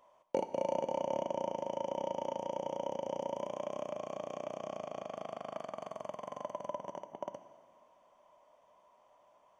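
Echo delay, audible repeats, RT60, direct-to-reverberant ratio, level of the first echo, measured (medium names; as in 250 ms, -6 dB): no echo, no echo, 1.8 s, 10.5 dB, no echo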